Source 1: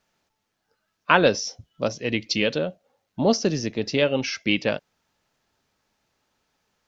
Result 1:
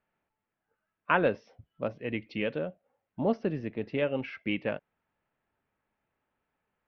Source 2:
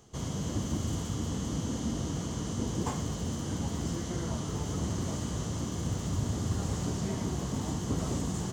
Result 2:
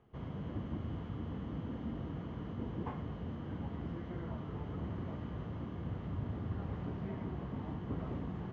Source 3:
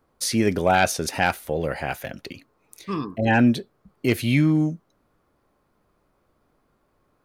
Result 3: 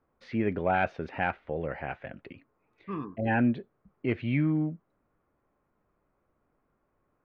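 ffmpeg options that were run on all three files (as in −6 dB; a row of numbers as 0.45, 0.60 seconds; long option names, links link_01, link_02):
-af "lowpass=frequency=2500:width=0.5412,lowpass=frequency=2500:width=1.3066,volume=-7.5dB"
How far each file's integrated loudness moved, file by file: −8.5, −8.0, −8.0 LU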